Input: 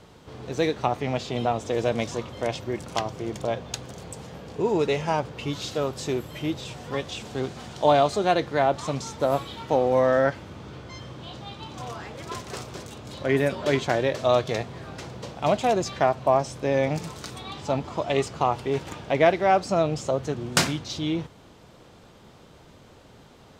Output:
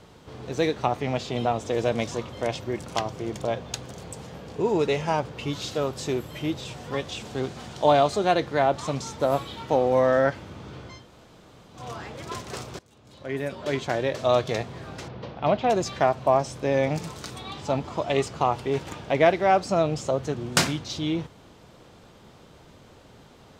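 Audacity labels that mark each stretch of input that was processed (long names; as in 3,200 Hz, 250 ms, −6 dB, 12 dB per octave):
10.980000	11.790000	fill with room tone, crossfade 0.24 s
12.790000	14.410000	fade in, from −22.5 dB
15.080000	15.700000	Bessel low-pass filter 3,100 Hz, order 6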